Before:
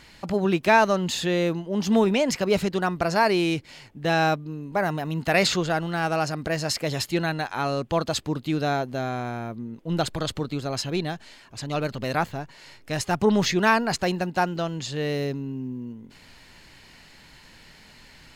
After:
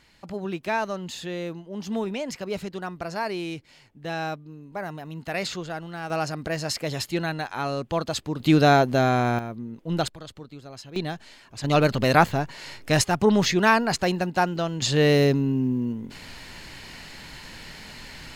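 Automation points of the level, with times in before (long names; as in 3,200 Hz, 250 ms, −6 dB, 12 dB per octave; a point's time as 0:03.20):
−8.5 dB
from 0:06.10 −2 dB
from 0:08.40 +8 dB
from 0:09.39 −0.5 dB
from 0:10.08 −13 dB
from 0:10.96 −1 dB
from 0:11.64 +7.5 dB
from 0:13.04 +1 dB
from 0:14.82 +8.5 dB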